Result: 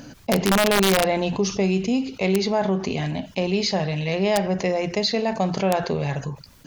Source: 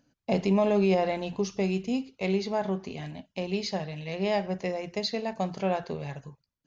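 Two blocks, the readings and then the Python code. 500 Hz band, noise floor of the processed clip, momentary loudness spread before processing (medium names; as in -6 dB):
+6.0 dB, -49 dBFS, 13 LU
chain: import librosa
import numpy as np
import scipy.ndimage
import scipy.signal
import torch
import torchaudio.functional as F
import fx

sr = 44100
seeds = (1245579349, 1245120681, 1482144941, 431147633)

y = (np.mod(10.0 ** (16.0 / 20.0) * x + 1.0, 2.0) - 1.0) / 10.0 ** (16.0 / 20.0)
y = fx.env_flatten(y, sr, amount_pct=50)
y = y * 10.0 ** (4.0 / 20.0)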